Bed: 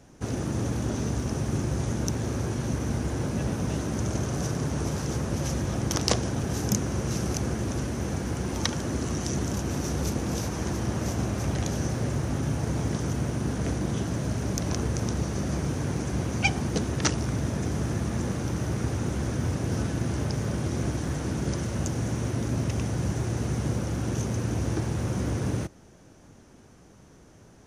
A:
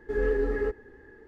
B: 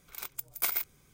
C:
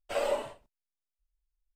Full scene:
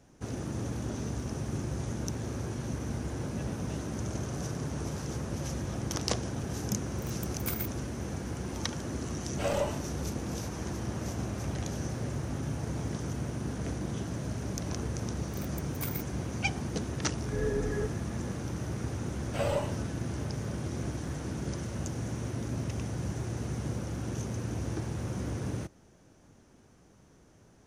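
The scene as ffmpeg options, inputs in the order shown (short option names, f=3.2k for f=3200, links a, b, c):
-filter_complex "[2:a]asplit=2[a][b];[3:a]asplit=2[c][d];[0:a]volume=-6.5dB[e];[a]dynaudnorm=f=110:g=5:m=11.5dB[f];[1:a]dynaudnorm=f=140:g=3:m=11.5dB[g];[f]atrim=end=1.13,asetpts=PTS-STARTPTS,volume=-16dB,afade=t=in:d=0.004:c=hsin,afade=t=out:st=1.126:d=0.004:c=hsin,adelay=6840[h];[c]atrim=end=1.75,asetpts=PTS-STARTPTS,volume=-1dB,afade=t=in:d=0.004:c=hsin,afade=t=out:st=1.746:d=0.004:c=hsin,adelay=9290[i];[b]atrim=end=1.13,asetpts=PTS-STARTPTS,volume=-9dB,afade=t=in:d=0.004:c=hsin,afade=t=out:st=1.126:d=0.004:c=hsin,adelay=15190[j];[g]atrim=end=1.27,asetpts=PTS-STARTPTS,volume=-17dB,afade=t=in:d=0.004:c=hsin,afade=t=out:st=1.266:d=0.004:c=hsin,adelay=756756S[k];[d]atrim=end=1.75,asetpts=PTS-STARTPTS,volume=-1.5dB,afade=t=in:d=0.004:c=hsin,afade=t=out:st=1.746:d=0.004:c=hsin,adelay=848484S[l];[e][h][i][j][k][l]amix=inputs=6:normalize=0"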